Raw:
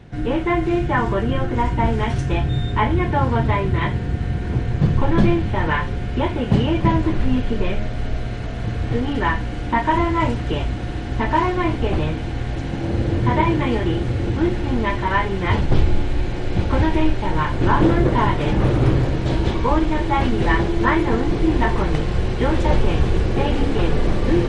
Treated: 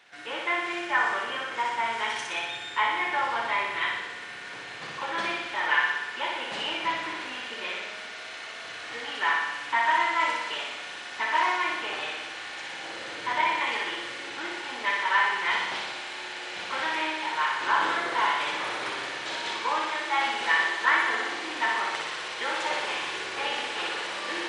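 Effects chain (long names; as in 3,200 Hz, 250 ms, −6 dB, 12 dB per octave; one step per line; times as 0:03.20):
high-pass filter 1,300 Hz 12 dB per octave
flutter between parallel walls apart 10.4 metres, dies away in 1.1 s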